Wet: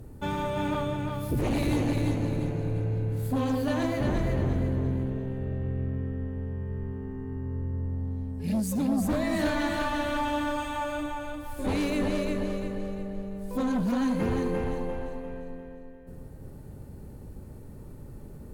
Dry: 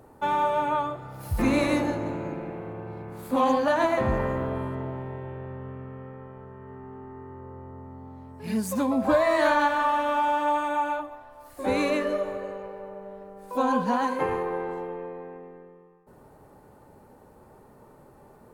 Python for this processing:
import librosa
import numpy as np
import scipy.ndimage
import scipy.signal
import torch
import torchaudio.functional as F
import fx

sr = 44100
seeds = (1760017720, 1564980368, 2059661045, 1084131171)

p1 = fx.tone_stack(x, sr, knobs='10-0-1')
p2 = fx.rider(p1, sr, range_db=5, speed_s=0.5)
p3 = p1 + F.gain(torch.from_numpy(p2), -1.0).numpy()
p4 = fx.fold_sine(p3, sr, drive_db=12, ceiling_db=-23.5)
y = fx.echo_feedback(p4, sr, ms=348, feedback_pct=39, wet_db=-4)